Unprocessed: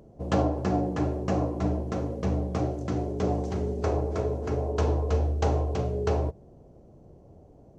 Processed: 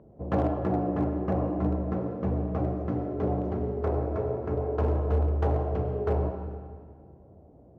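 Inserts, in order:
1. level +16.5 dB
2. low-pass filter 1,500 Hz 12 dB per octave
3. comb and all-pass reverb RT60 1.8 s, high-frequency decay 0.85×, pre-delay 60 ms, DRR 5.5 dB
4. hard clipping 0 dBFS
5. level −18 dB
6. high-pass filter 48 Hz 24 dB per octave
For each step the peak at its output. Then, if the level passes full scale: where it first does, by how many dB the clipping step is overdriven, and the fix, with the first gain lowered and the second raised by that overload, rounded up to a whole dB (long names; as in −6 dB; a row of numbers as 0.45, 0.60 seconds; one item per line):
+4.0, +3.5, +5.0, 0.0, −18.0, −14.0 dBFS
step 1, 5.0 dB
step 1 +11.5 dB, step 5 −13 dB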